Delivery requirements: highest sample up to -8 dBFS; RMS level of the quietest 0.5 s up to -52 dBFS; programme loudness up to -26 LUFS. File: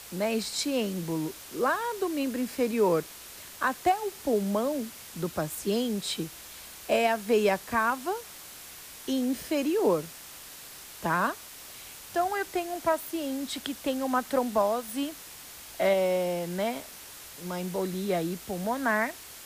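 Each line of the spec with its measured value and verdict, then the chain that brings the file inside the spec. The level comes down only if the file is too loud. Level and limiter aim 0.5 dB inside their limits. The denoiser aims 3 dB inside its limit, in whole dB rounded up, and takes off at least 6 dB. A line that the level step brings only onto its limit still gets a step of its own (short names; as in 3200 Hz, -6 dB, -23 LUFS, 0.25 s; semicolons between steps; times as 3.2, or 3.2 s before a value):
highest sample -14.0 dBFS: OK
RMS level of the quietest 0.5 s -46 dBFS: fail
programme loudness -29.0 LUFS: OK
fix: denoiser 9 dB, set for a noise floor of -46 dBFS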